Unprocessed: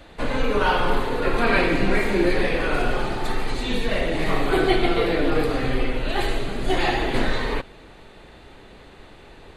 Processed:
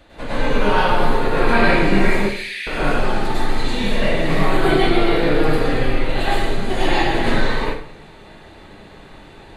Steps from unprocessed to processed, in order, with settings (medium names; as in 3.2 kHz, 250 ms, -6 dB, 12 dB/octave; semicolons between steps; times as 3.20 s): 2.16–2.67 s: steep high-pass 2 kHz; plate-style reverb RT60 0.53 s, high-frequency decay 0.75×, pre-delay 90 ms, DRR -7.5 dB; trim -4 dB